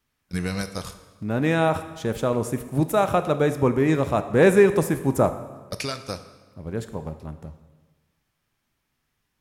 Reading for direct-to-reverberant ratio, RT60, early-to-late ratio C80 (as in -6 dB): 10.0 dB, 1.3 s, 13.0 dB